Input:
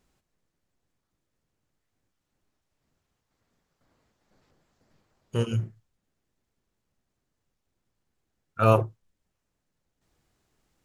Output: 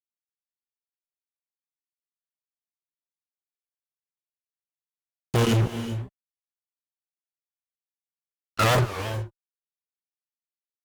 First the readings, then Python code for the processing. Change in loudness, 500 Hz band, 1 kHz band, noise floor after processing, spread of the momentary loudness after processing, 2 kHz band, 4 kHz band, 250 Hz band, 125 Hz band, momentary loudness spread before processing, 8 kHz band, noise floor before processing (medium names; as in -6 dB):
+0.5 dB, -0.5 dB, +2.0 dB, under -85 dBFS, 14 LU, +9.5 dB, +13.0 dB, +4.5 dB, +3.5 dB, 18 LU, +15.0 dB, -81 dBFS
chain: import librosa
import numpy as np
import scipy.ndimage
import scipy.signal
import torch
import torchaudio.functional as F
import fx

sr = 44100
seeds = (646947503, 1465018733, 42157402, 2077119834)

y = fx.fuzz(x, sr, gain_db=40.0, gate_db=-42.0)
y = fx.rev_gated(y, sr, seeds[0], gate_ms=430, shape='rising', drr_db=11.0)
y = fx.record_warp(y, sr, rpm=45.0, depth_cents=250.0)
y = y * 10.0 ** (-5.0 / 20.0)